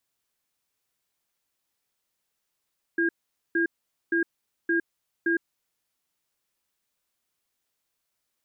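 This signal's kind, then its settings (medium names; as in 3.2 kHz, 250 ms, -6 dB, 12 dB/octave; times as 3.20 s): cadence 336 Hz, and 1.62 kHz, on 0.11 s, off 0.46 s, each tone -23.5 dBFS 2.58 s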